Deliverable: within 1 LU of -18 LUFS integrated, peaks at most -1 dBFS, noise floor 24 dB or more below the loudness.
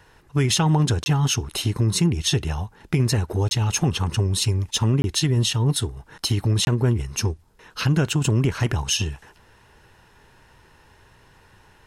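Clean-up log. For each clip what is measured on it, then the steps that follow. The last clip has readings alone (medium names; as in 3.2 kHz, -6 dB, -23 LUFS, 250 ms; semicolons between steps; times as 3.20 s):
dropouts 4; longest dropout 21 ms; loudness -22.0 LUFS; peak level -9.0 dBFS; loudness target -18.0 LUFS
-> interpolate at 1.04/3.49/5.02/6.65 s, 21 ms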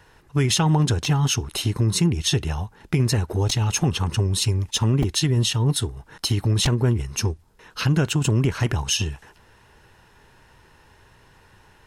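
dropouts 0; loudness -22.0 LUFS; peak level -9.0 dBFS; loudness target -18.0 LUFS
-> trim +4 dB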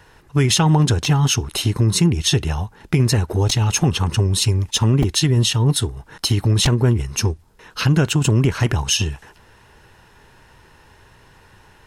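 loudness -18.0 LUFS; peak level -5.0 dBFS; noise floor -51 dBFS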